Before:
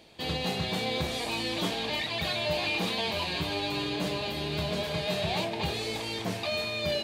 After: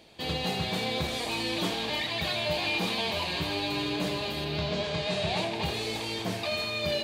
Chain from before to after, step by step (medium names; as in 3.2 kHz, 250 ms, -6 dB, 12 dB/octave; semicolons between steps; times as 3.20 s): 4.44–5.53 s: low-pass 5.5 kHz -> 12 kHz 24 dB/octave; thinning echo 81 ms, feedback 67%, level -10 dB